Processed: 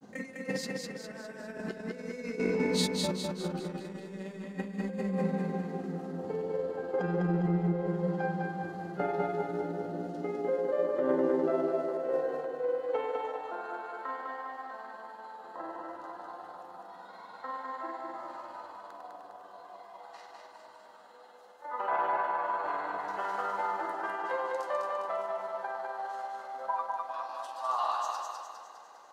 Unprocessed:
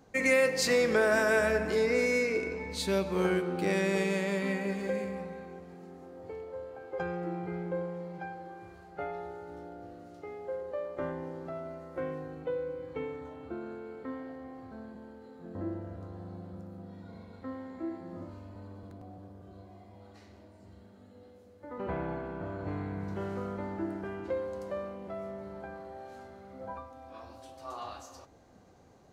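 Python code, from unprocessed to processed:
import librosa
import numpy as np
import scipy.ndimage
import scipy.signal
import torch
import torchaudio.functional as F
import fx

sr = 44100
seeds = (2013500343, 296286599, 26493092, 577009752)

p1 = fx.filter_sweep_highpass(x, sr, from_hz=190.0, to_hz=920.0, start_s=10.09, end_s=13.65, q=2.6)
p2 = fx.notch(p1, sr, hz=2300.0, q=7.6)
p3 = fx.over_compress(p2, sr, threshold_db=-33.0, ratio=-0.5)
p4 = fx.granulator(p3, sr, seeds[0], grain_ms=100.0, per_s=20.0, spray_ms=16.0, spread_st=0)
p5 = p4 + fx.echo_feedback(p4, sr, ms=203, feedback_pct=51, wet_db=-3.0, dry=0)
y = F.gain(torch.from_numpy(p5), 1.5).numpy()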